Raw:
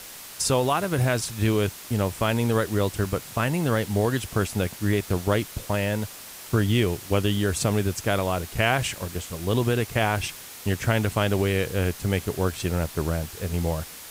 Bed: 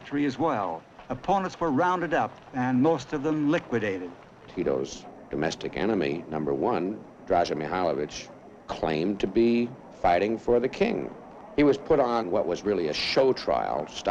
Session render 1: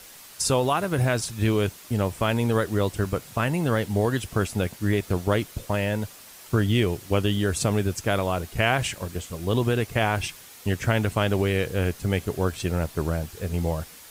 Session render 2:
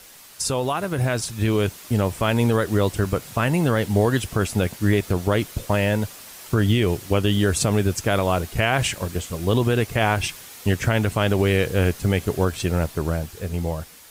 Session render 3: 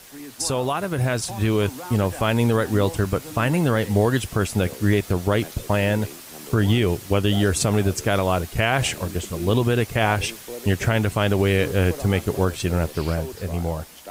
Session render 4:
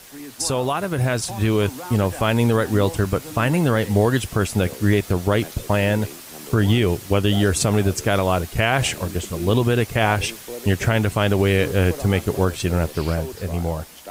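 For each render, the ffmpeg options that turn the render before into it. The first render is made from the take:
ffmpeg -i in.wav -af "afftdn=noise_reduction=6:noise_floor=-42" out.wav
ffmpeg -i in.wav -af "alimiter=limit=-13dB:level=0:latency=1:release=113,dynaudnorm=framelen=220:gausssize=13:maxgain=5dB" out.wav
ffmpeg -i in.wav -i bed.wav -filter_complex "[1:a]volume=-13dB[link_01];[0:a][link_01]amix=inputs=2:normalize=0" out.wav
ffmpeg -i in.wav -af "volume=1.5dB" out.wav

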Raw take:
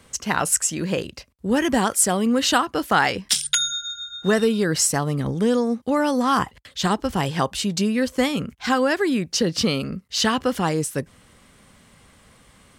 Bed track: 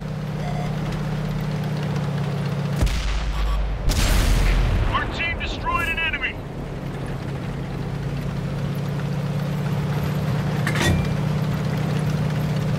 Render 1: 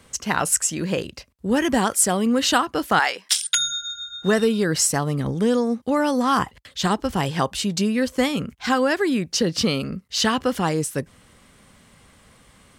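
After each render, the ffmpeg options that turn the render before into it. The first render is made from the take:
ffmpeg -i in.wav -filter_complex "[0:a]asettb=1/sr,asplit=3[link_01][link_02][link_03];[link_01]atrim=end=2.994[link_04];[link_02]atrim=start=2.99:end=3.57,asetpts=PTS-STARTPTS,afade=type=in:duration=0.004:curve=qsin,afade=type=out:start_time=0.576:duration=0.004:curve=qsin,highpass=640[link_05];[link_03]atrim=start=3.566[link_06];[link_04][link_05]acrossfade=duration=0.004:curve1=hsin:curve2=qsin[link_07];[link_07][link_06]acrossfade=duration=0.004:curve1=qsin:curve2=hsin" out.wav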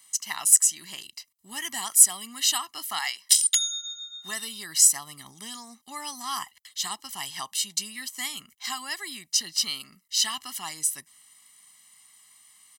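ffmpeg -i in.wav -af "aderivative,aecho=1:1:1:0.98" out.wav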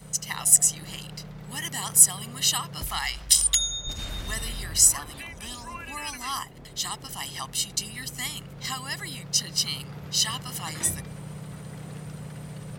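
ffmpeg -i in.wav -i bed.wav -filter_complex "[1:a]volume=-16.5dB[link_01];[0:a][link_01]amix=inputs=2:normalize=0" out.wav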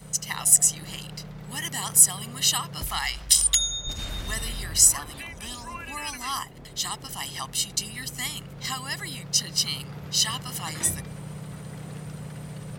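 ffmpeg -i in.wav -af "volume=1dB,alimiter=limit=-3dB:level=0:latency=1" out.wav

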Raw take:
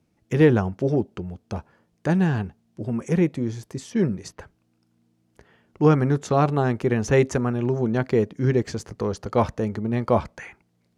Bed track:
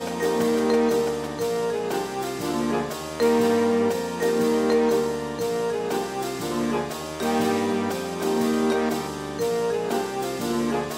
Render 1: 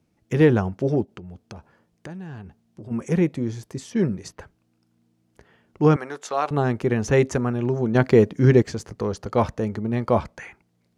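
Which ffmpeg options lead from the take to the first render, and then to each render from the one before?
ffmpeg -i in.wav -filter_complex "[0:a]asplit=3[link_01][link_02][link_03];[link_01]afade=type=out:start_time=1.04:duration=0.02[link_04];[link_02]acompressor=threshold=-35dB:ratio=6:attack=3.2:release=140:knee=1:detection=peak,afade=type=in:start_time=1.04:duration=0.02,afade=type=out:start_time=2.9:duration=0.02[link_05];[link_03]afade=type=in:start_time=2.9:duration=0.02[link_06];[link_04][link_05][link_06]amix=inputs=3:normalize=0,asettb=1/sr,asplit=3[link_07][link_08][link_09];[link_07]atrim=end=5.964[link_10];[link_08]atrim=start=5.96:end=6.51,asetpts=PTS-STARTPTS,afade=type=in:duration=0.004:curve=qsin,afade=type=out:start_time=0.546:duration=0.004:curve=qsin,highpass=660[link_11];[link_09]atrim=start=6.506[link_12];[link_10][link_11]acrossfade=duration=0.004:curve1=hsin:curve2=qsin[link_13];[link_13][link_12]acrossfade=duration=0.004:curve1=qsin:curve2=hsin,asplit=3[link_14][link_15][link_16];[link_14]atrim=end=7.952[link_17];[link_15]atrim=start=7.948:end=8.622,asetpts=PTS-STARTPTS,volume=5.5dB[link_18];[link_16]atrim=start=8.618[link_19];[link_17][link_18]acrossfade=duration=0.004:curve1=hsin:curve2=hsin[link_20];[link_20][link_19]acrossfade=duration=0.004:curve1=hsin:curve2=hsin" out.wav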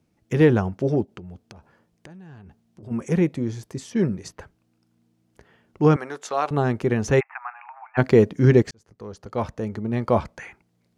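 ffmpeg -i in.wav -filter_complex "[0:a]asettb=1/sr,asplit=3[link_01][link_02][link_03];[link_01]atrim=end=1.404[link_04];[link_02]atrim=start=1.4:end=2.83,asetpts=PTS-STARTPTS,afade=type=in:duration=0.004:curve=qsin,afade=type=out:start_time=1.426:duration=0.004:curve=qsin,acompressor=threshold=-41dB:ratio=6:attack=3.2:release=140:knee=1:detection=peak[link_05];[link_03]atrim=start=2.826[link_06];[link_04][link_05]acrossfade=duration=0.004:curve1=hsin:curve2=qsin[link_07];[link_07][link_06]acrossfade=duration=0.004:curve1=qsin:curve2=hsin,asplit=3[link_08][link_09][link_10];[link_08]afade=type=out:start_time=7.19:duration=0.02[link_11];[link_09]asuperpass=centerf=1400:order=20:qfactor=0.75,afade=type=in:start_time=7.19:duration=0.02,afade=type=out:start_time=7.97:duration=0.02[link_12];[link_10]afade=type=in:start_time=7.97:duration=0.02[link_13];[link_11][link_12][link_13]amix=inputs=3:normalize=0,asplit=2[link_14][link_15];[link_14]atrim=end=8.71,asetpts=PTS-STARTPTS,afade=type=out:start_time=8.706:duration=0.004:curve=hsin[link_16];[link_15]atrim=start=8.71,asetpts=PTS-STARTPTS,afade=type=in:duration=1.32[link_17];[link_16][link_17]concat=n=2:v=0:a=1" out.wav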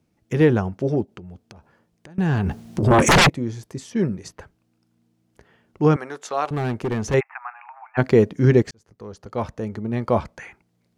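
ffmpeg -i in.wav -filter_complex "[0:a]asettb=1/sr,asplit=3[link_01][link_02][link_03];[link_01]atrim=end=2.184[link_04];[link_02]atrim=start=2.18:end=3.3,asetpts=PTS-STARTPTS,afade=type=in:duration=0.004:curve=qsin,afade=type=out:start_time=1.116:duration=0.004:curve=qsin,aeval=exprs='0.316*sin(PI/2*10*val(0)/0.316)':channel_layout=same[link_05];[link_03]atrim=start=3.296[link_06];[link_04][link_05]acrossfade=duration=0.004:curve1=hsin:curve2=qsin[link_07];[link_07][link_06]acrossfade=duration=0.004:curve1=qsin:curve2=hsin,asettb=1/sr,asplit=3[link_08][link_09][link_10];[link_08]atrim=end=6.454[link_11];[link_09]atrim=start=6.45:end=7.14,asetpts=PTS-STARTPTS,afade=type=in:duration=0.004:curve=qsin,afade=type=out:start_time=0.686:duration=0.004:curve=qsin,volume=20dB,asoftclip=hard,volume=-20dB[link_12];[link_10]atrim=start=7.136[link_13];[link_11][link_12]acrossfade=duration=0.004:curve1=hsin:curve2=qsin[link_14];[link_14][link_13]acrossfade=duration=0.004:curve1=qsin:curve2=hsin" out.wav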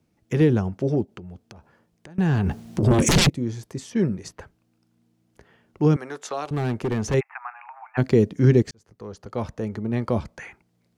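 ffmpeg -i in.wav -filter_complex "[0:a]acrossover=split=420|3000[link_01][link_02][link_03];[link_02]acompressor=threshold=-29dB:ratio=6[link_04];[link_01][link_04][link_03]amix=inputs=3:normalize=0" out.wav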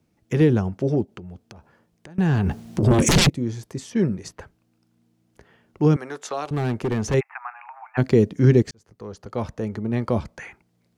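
ffmpeg -i in.wav -af "volume=1dB" out.wav

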